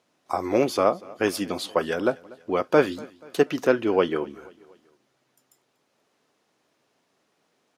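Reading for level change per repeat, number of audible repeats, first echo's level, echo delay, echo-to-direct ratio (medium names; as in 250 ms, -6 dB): -6.0 dB, 3, -22.5 dB, 241 ms, -21.5 dB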